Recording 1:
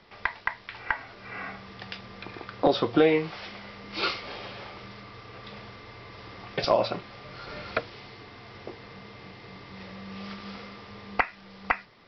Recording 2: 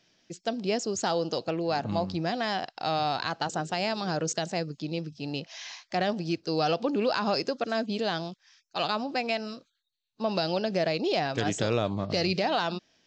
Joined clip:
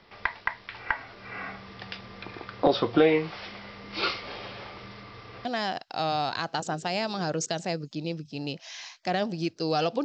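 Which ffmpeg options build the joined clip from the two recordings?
-filter_complex "[0:a]apad=whole_dur=10.04,atrim=end=10.04,atrim=end=5.452[s0];[1:a]atrim=start=2.318:end=6.91[s1];[s0][s1]acrossfade=d=0.004:c1=hsin:c2=hsin"

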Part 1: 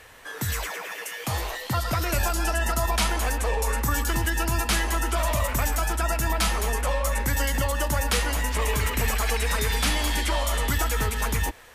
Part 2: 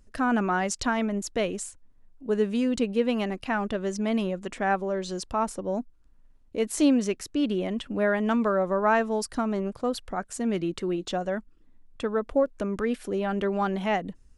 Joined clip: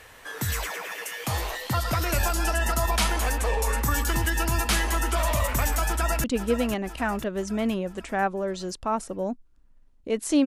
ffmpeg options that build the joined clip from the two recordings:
-filter_complex "[0:a]apad=whole_dur=10.46,atrim=end=10.46,atrim=end=6.242[s0];[1:a]atrim=start=2.718:end=6.94[s1];[s0][s1]acrossfade=d=0.004:c1=hsin:c2=hsin,asplit=2[s2][s3];[s3]afade=t=in:st=5.85:d=0.01,afade=t=out:st=6.24:d=0.01,aecho=0:1:500|1000|1500|2000|2500|3000:0.354813|0.195147|0.107331|0.0590321|0.0324676|0.0178572[s4];[s2][s4]amix=inputs=2:normalize=0"

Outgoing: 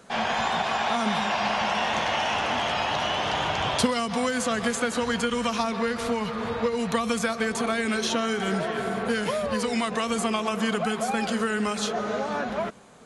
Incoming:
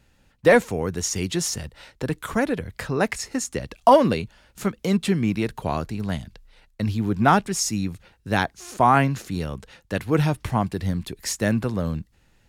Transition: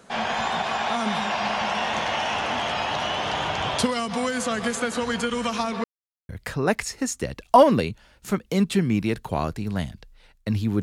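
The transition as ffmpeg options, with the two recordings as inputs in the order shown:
-filter_complex "[0:a]apad=whole_dur=10.82,atrim=end=10.82,asplit=2[s0][s1];[s0]atrim=end=5.84,asetpts=PTS-STARTPTS,afade=t=out:st=5.836:d=0.004:c=hsin[s2];[s1]atrim=start=5.84:end=6.29,asetpts=PTS-STARTPTS,volume=0[s3];[1:a]atrim=start=2.62:end=7.15,asetpts=PTS-STARTPTS,afade=t=in:d=0.004:c=hsin[s4];[s2][s3][s4]concat=n=3:v=0:a=1"

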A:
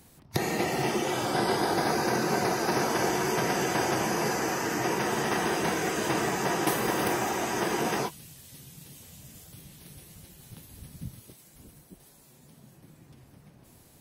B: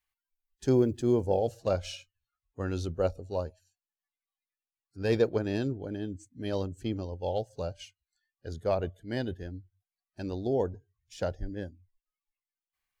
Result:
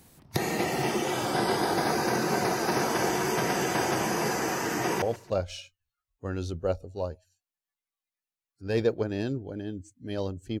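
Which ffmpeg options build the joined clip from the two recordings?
-filter_complex "[0:a]apad=whole_dur=10.6,atrim=end=10.6,atrim=end=5.022[s0];[1:a]atrim=start=1.368:end=6.95[s1];[s0][s1]acrossfade=d=0.004:c1=hsin:c2=hsin,asplit=2[s2][s3];[s3]afade=t=in:st=4.74:d=0.01,afade=t=out:st=5.02:d=0.01,aecho=0:1:140|280|420:0.149624|0.0448871|0.0134661[s4];[s2][s4]amix=inputs=2:normalize=0"

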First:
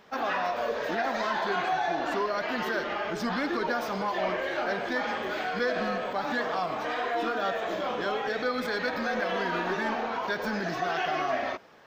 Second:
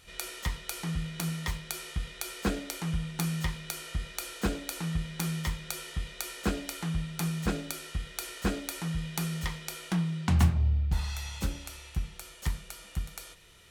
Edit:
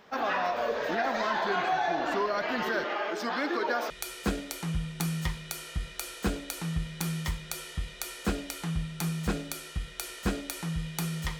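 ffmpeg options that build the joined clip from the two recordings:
-filter_complex "[0:a]asettb=1/sr,asplit=3[s0][s1][s2];[s0]atrim=end=2.844[s3];[s1]atrim=start=2.84:end=3.9,asetpts=PTS-STARTPTS,afade=t=in:d=0.004:c=qsin,afade=t=out:st=1.056:d=0.004:c=qsin,highpass=f=270:w=0.5412,highpass=f=270:w=1.3066[s4];[s2]atrim=start=3.896[s5];[s3][s4]acrossfade=d=0.004:c1=hsin:c2=qsin[s6];[s6][s5]acrossfade=d=0.004:c1=qsin:c2=hsin,apad=whole_dur=11.39,atrim=end=11.39,atrim=end=3.902[s7];[1:a]atrim=start=2.088:end=9.58[s8];[s7][s8]acrossfade=d=0.004:c1=hsin:c2=hsin"

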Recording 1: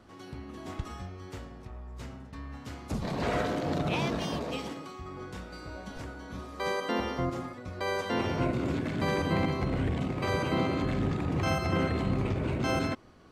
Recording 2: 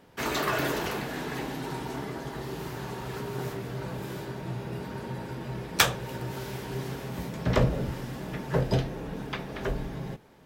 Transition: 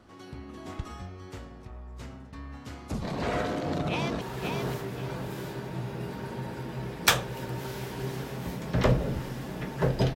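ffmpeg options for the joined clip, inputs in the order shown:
-filter_complex "[0:a]apad=whole_dur=10.15,atrim=end=10.15,atrim=end=4.212[s0];[1:a]atrim=start=2.928:end=8.87[s1];[s0][s1]acrossfade=d=0.004:c1=hsin:c2=hsin,asplit=2[s2][s3];[s3]afade=t=in:st=3.89:d=0.01,afade=t=out:st=4.21:d=0.01,aecho=0:1:530|1060|1590:0.630957|0.157739|0.0394348[s4];[s2][s4]amix=inputs=2:normalize=0"

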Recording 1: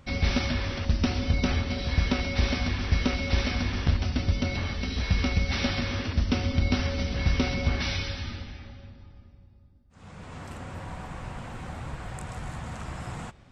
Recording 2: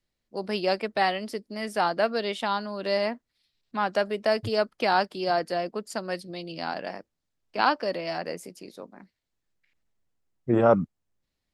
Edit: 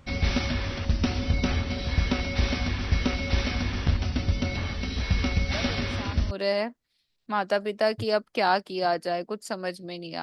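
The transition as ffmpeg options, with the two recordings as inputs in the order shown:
-filter_complex "[1:a]asplit=2[s0][s1];[0:a]apad=whole_dur=10.22,atrim=end=10.22,atrim=end=6.312[s2];[s1]atrim=start=2.758:end=6.67[s3];[s0]atrim=start=1.98:end=2.76,asetpts=PTS-STARTPTS,volume=0.224,afade=t=in:d=0.004:c=hsin,afade=t=out:st=0.776:d=0.004:c=hsin,adelay=243873S[s4];[s2][s3]acrossfade=d=0.004:c1=hsin:c2=hsin[s5];[s5][s4]amix=inputs=2:normalize=0"

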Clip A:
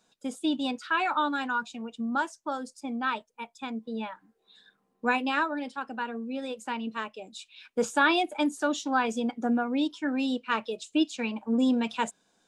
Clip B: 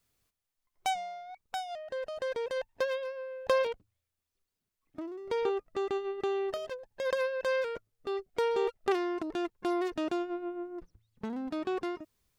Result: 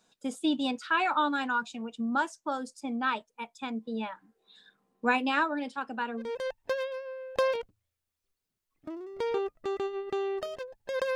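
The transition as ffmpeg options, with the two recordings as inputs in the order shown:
-filter_complex "[0:a]apad=whole_dur=11.15,atrim=end=11.15,atrim=end=6.31,asetpts=PTS-STARTPTS[s0];[1:a]atrim=start=2.28:end=7.26,asetpts=PTS-STARTPTS[s1];[s0][s1]acrossfade=d=0.14:c1=tri:c2=tri"

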